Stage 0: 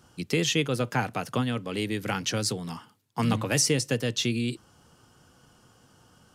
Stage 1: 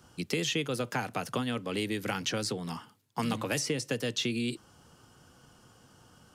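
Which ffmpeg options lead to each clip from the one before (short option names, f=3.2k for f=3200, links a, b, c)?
-filter_complex "[0:a]acrossover=split=180|3800[a][b][c];[a]acompressor=threshold=-43dB:ratio=4[d];[b]acompressor=threshold=-29dB:ratio=4[e];[c]acompressor=threshold=-37dB:ratio=4[f];[d][e][f]amix=inputs=3:normalize=0"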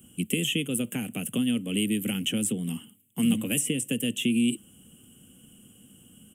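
-af "firequalizer=gain_entry='entry(130,0);entry(210,12);entry(350,1);entry(920,-16);entry(1600,-10);entry(3000,9);entry(4400,-26);entry(8000,13);entry(15000,15)':delay=0.05:min_phase=1"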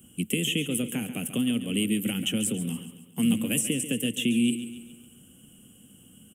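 -af "aecho=1:1:139|278|417|556|695:0.251|0.123|0.0603|0.0296|0.0145"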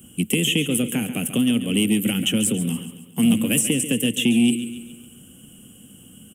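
-af "asoftclip=type=tanh:threshold=-14dB,volume=7dB"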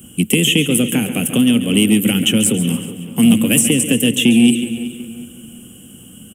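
-filter_complex "[0:a]asplit=2[a][b];[b]adelay=372,lowpass=f=2.6k:p=1,volume=-13dB,asplit=2[c][d];[d]adelay=372,lowpass=f=2.6k:p=1,volume=0.38,asplit=2[e][f];[f]adelay=372,lowpass=f=2.6k:p=1,volume=0.38,asplit=2[g][h];[h]adelay=372,lowpass=f=2.6k:p=1,volume=0.38[i];[a][c][e][g][i]amix=inputs=5:normalize=0,volume=6.5dB"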